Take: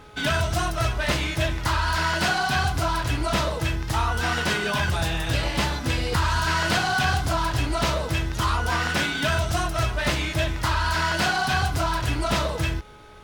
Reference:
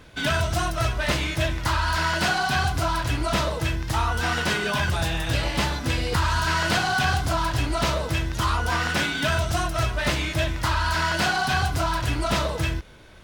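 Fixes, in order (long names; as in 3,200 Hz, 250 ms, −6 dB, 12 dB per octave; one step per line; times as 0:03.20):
hum removal 420.7 Hz, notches 3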